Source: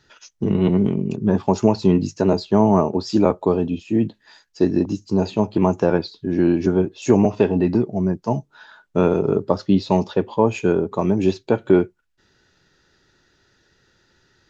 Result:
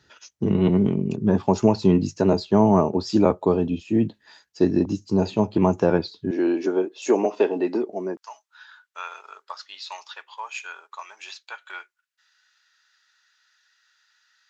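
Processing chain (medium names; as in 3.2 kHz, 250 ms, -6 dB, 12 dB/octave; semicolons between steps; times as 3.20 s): high-pass 46 Hz 24 dB/octave, from 6.31 s 310 Hz, from 8.17 s 1.2 kHz; trim -1.5 dB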